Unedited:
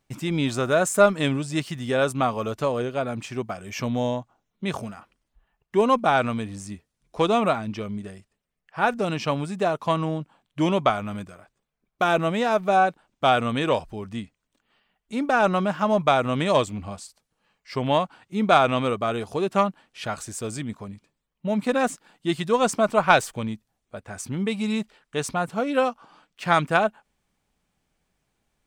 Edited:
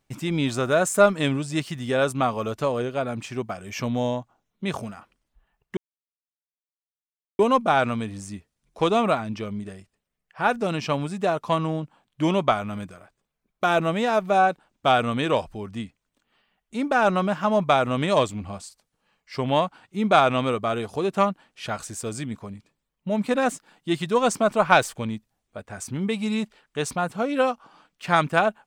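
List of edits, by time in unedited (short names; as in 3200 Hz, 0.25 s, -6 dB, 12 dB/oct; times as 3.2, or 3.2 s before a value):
5.77 insert silence 1.62 s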